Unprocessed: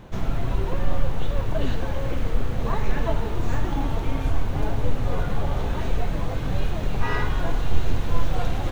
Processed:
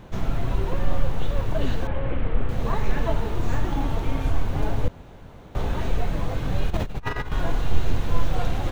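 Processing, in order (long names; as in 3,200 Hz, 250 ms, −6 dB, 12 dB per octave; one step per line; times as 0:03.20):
0:01.87–0:02.49: low-pass filter 3,000 Hz 24 dB per octave
0:04.88–0:05.55: fill with room tone
0:06.69–0:07.32: compressor whose output falls as the input rises −25 dBFS, ratio −0.5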